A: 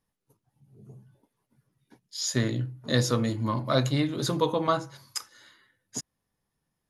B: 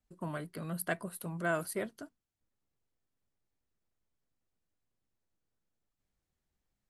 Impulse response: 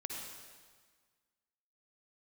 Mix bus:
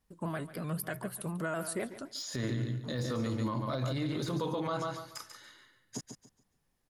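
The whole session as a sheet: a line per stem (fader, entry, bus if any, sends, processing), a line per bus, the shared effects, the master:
−0.5 dB, 0.00 s, no send, echo send −8 dB, de-essing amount 85%
+3.0 dB, 0.00 s, no send, echo send −16.5 dB, pitch modulation by a square or saw wave square 3.9 Hz, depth 100 cents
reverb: not used
echo: repeating echo 142 ms, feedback 25%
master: brickwall limiter −25.5 dBFS, peak gain reduction 14.5 dB

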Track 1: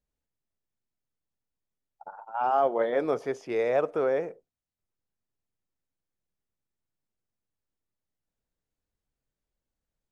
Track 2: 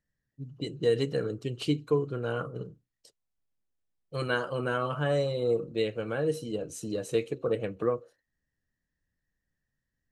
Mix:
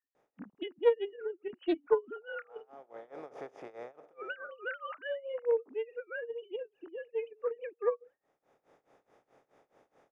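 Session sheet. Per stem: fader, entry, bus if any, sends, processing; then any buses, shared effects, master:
−16.0 dB, 0.15 s, no send, compressor on every frequency bin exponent 0.4; automatic ducking −16 dB, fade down 0.40 s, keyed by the second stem
−0.5 dB, 0.00 s, no send, three sine waves on the formant tracks; graphic EQ with 15 bands 250 Hz +6 dB, 630 Hz −5 dB, 1,600 Hz +5 dB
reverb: not used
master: amplitude tremolo 4.7 Hz, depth 92%; highs frequency-modulated by the lows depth 0.18 ms

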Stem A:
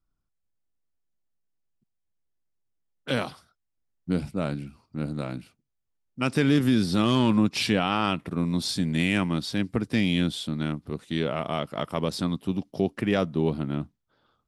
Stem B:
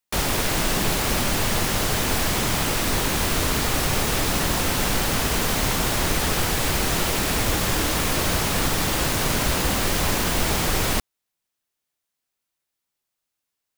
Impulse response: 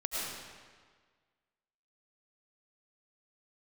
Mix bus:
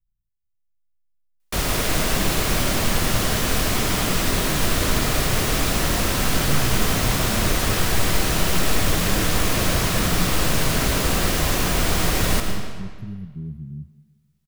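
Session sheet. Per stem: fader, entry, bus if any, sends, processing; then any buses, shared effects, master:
−0.5 dB, 0.00 s, send −22 dB, inverse Chebyshev band-stop filter 500–8,000 Hz, stop band 40 dB; phaser with its sweep stopped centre 1,400 Hz, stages 8
−4.0 dB, 1.40 s, send −5 dB, no processing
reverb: on, RT60 1.6 s, pre-delay 65 ms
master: low-shelf EQ 140 Hz +3 dB; notch filter 860 Hz, Q 12

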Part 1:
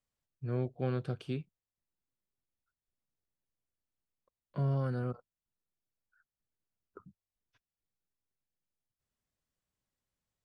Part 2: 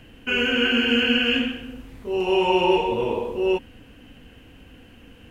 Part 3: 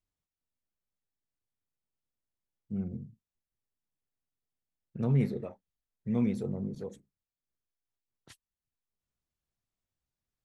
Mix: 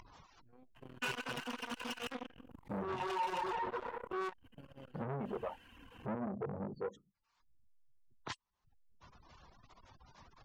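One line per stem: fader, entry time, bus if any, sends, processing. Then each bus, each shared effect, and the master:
−6.5 dB, 0.00 s, no bus, no send, low-pass that shuts in the quiet parts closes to 310 Hz, open at −34 dBFS; flanger 0.24 Hz, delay 2 ms, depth 6.7 ms, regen −35%
−5.0 dB, 0.75 s, bus A, no send, tube saturation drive 29 dB, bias 0.35
+0.5 dB, 0.00 s, bus A, no send, low-pass filter 6,400 Hz 24 dB per octave; gate on every frequency bin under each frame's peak −25 dB strong; upward compression, threshold −33 dBFS
bus A: 0.0 dB, parametric band 1,000 Hz +15 dB 0.77 octaves; brickwall limiter −26.5 dBFS, peak gain reduction 10 dB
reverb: not used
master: reverb reduction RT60 0.98 s; saturating transformer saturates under 760 Hz

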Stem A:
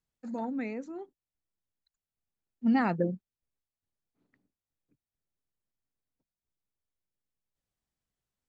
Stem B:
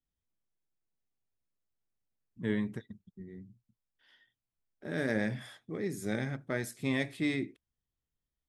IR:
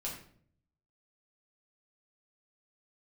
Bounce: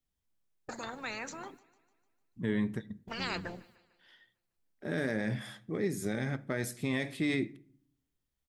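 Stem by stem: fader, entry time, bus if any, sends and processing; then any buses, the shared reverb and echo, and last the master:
−7.5 dB, 0.45 s, no send, echo send −22 dB, noise gate −53 dBFS, range −37 dB; every bin compressed towards the loudest bin 10 to 1
+2.5 dB, 0.00 s, send −17 dB, no echo send, no processing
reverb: on, RT60 0.55 s, pre-delay 5 ms
echo: repeating echo 150 ms, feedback 52%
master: brickwall limiter −21 dBFS, peak gain reduction 6.5 dB

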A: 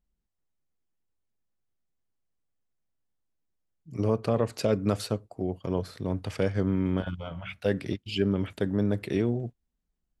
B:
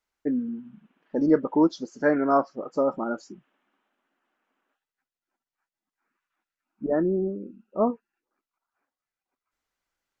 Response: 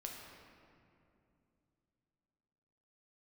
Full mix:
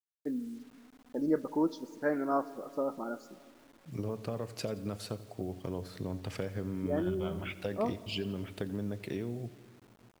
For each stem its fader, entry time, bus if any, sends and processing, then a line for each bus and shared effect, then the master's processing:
−2.0 dB, 0.00 s, send −11.5 dB, echo send −17 dB, downward compressor 5 to 1, threshold −33 dBFS, peak gain reduction 12.5 dB
−10.5 dB, 0.00 s, send −10.5 dB, no echo send, noise gate −42 dBFS, range −9 dB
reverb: on, RT60 2.7 s, pre-delay 7 ms
echo: repeating echo 87 ms, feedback 54%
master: bit-depth reduction 10 bits, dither none

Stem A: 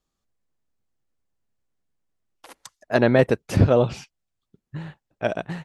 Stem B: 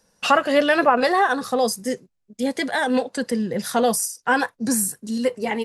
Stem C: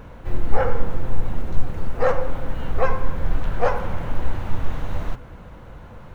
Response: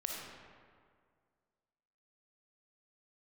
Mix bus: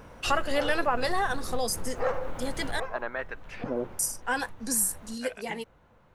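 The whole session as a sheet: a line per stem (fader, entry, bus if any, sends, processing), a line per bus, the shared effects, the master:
−4.0 dB, 0.00 s, no send, auto-filter band-pass saw up 0.55 Hz 250–2,500 Hz
−10.0 dB, 0.00 s, muted 0:02.80–0:03.99, no send, high-shelf EQ 3,800 Hz +8.5 dB
0:02.71 −3.5 dB → 0:02.99 −15.5 dB, 0.00 s, no send, downward compressor, threshold −15 dBFS, peak gain reduction 10 dB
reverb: not used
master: low-shelf EQ 160 Hz −8.5 dB

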